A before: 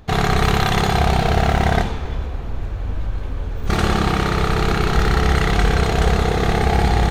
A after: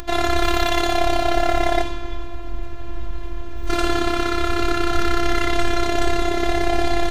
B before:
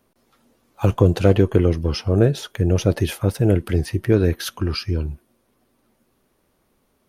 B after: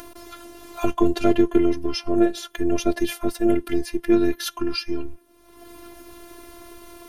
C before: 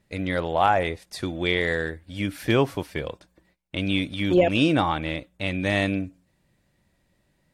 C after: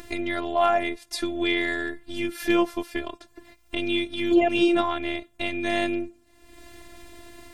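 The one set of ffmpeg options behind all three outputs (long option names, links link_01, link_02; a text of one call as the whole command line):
ffmpeg -i in.wav -af "acompressor=mode=upward:threshold=-22dB:ratio=2.5,afftfilt=real='hypot(re,im)*cos(PI*b)':imag='0':win_size=512:overlap=0.75,volume=2.5dB" out.wav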